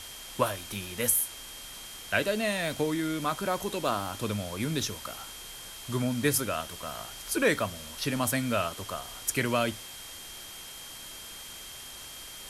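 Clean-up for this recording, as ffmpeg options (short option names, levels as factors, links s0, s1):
-af "bandreject=f=3200:w=30,afftdn=nr=30:nf=-44"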